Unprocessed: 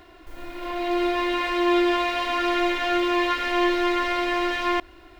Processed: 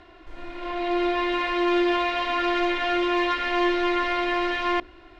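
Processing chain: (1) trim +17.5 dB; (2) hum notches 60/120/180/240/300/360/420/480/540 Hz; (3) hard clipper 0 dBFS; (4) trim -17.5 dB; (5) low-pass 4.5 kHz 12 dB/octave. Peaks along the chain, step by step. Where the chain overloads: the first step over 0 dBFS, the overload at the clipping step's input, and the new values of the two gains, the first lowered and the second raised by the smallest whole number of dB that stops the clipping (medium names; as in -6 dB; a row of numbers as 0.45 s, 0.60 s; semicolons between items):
+6.5 dBFS, +6.5 dBFS, 0.0 dBFS, -17.5 dBFS, -17.0 dBFS; step 1, 6.5 dB; step 1 +10.5 dB, step 4 -10.5 dB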